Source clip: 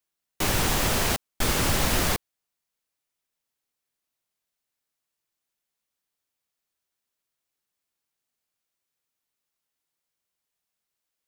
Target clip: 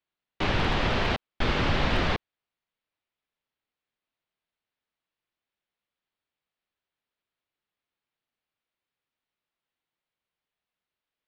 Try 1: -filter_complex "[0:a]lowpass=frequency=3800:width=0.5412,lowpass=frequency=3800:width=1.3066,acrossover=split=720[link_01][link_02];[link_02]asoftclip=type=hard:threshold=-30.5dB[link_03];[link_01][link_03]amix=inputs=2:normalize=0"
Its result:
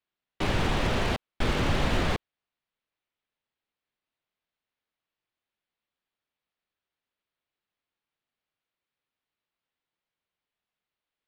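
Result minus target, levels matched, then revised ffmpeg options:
hard clipping: distortion +26 dB
-filter_complex "[0:a]lowpass=frequency=3800:width=0.5412,lowpass=frequency=3800:width=1.3066,acrossover=split=720[link_01][link_02];[link_02]asoftclip=type=hard:threshold=-21dB[link_03];[link_01][link_03]amix=inputs=2:normalize=0"

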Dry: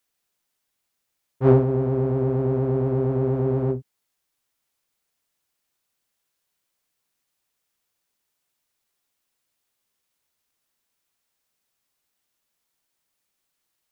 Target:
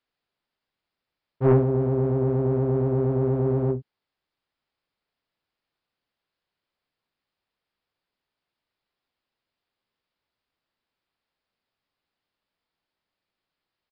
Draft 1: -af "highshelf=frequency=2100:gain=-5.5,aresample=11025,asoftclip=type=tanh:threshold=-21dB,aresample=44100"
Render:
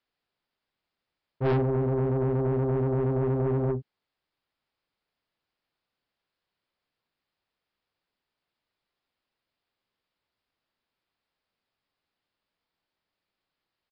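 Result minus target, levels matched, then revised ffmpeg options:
soft clipping: distortion +9 dB
-af "highshelf=frequency=2100:gain=-5.5,aresample=11025,asoftclip=type=tanh:threshold=-10dB,aresample=44100"

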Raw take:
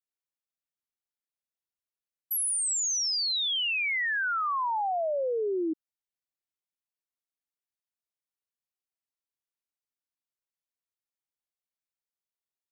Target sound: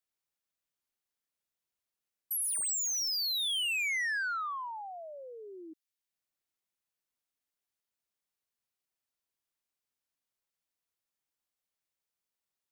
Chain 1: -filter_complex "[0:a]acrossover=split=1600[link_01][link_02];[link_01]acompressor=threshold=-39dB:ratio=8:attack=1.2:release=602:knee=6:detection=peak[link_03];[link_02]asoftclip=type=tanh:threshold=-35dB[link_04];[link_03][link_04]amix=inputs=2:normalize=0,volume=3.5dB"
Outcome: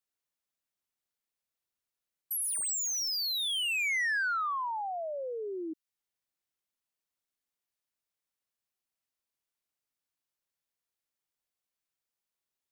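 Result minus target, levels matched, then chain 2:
downward compressor: peak gain reduction −10 dB
-filter_complex "[0:a]acrossover=split=1600[link_01][link_02];[link_01]acompressor=threshold=-50.5dB:ratio=8:attack=1.2:release=602:knee=6:detection=peak[link_03];[link_02]asoftclip=type=tanh:threshold=-35dB[link_04];[link_03][link_04]amix=inputs=2:normalize=0,volume=3.5dB"

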